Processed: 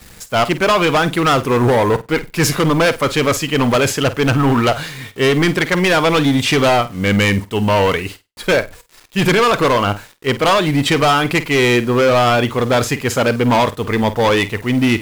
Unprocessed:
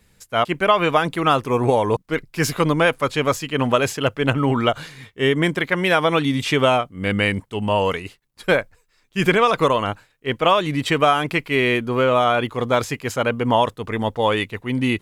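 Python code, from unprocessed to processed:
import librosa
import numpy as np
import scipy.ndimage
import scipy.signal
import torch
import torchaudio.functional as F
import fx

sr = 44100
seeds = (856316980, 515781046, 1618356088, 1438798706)

y = fx.law_mismatch(x, sr, coded='mu')
y = np.clip(10.0 ** (17.0 / 20.0) * y, -1.0, 1.0) / 10.0 ** (17.0 / 20.0)
y = fx.quant_dither(y, sr, seeds[0], bits=8, dither='none')
y = fx.room_flutter(y, sr, wall_m=8.5, rt60_s=0.21)
y = F.gain(torch.from_numpy(y), 7.0).numpy()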